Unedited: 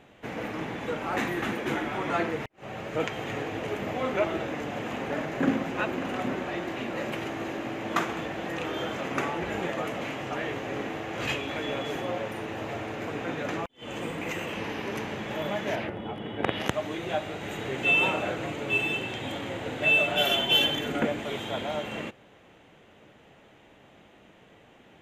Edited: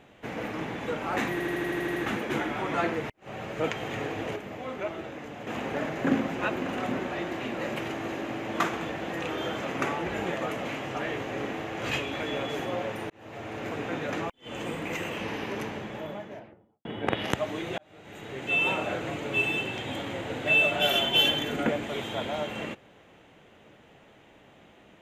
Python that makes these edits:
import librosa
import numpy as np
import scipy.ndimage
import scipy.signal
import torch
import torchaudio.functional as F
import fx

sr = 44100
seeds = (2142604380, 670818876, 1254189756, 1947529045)

y = fx.studio_fade_out(x, sr, start_s=14.76, length_s=1.45)
y = fx.edit(y, sr, fx.stutter(start_s=1.32, slice_s=0.08, count=9),
    fx.clip_gain(start_s=3.72, length_s=1.11, db=-7.0),
    fx.fade_in_span(start_s=12.46, length_s=0.54),
    fx.fade_in_span(start_s=17.14, length_s=1.6, curve='qsin'), tone=tone)